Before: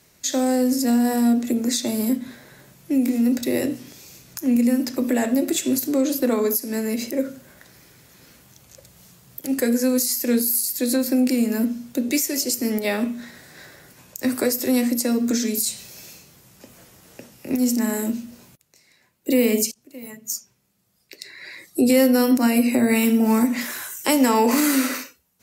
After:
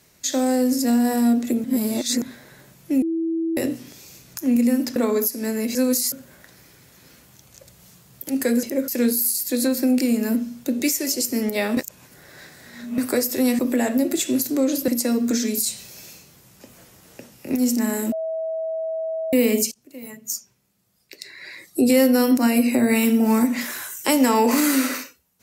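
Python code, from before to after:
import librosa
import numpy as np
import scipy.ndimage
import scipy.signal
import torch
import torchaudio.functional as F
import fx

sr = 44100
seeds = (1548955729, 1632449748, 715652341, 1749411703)

y = fx.edit(x, sr, fx.reverse_span(start_s=1.64, length_s=0.58),
    fx.bleep(start_s=3.02, length_s=0.55, hz=328.0, db=-20.5),
    fx.move(start_s=4.96, length_s=1.29, to_s=14.88),
    fx.swap(start_s=7.04, length_s=0.25, other_s=9.8, other_length_s=0.37),
    fx.reverse_span(start_s=13.06, length_s=1.21),
    fx.bleep(start_s=18.12, length_s=1.21, hz=646.0, db=-23.5), tone=tone)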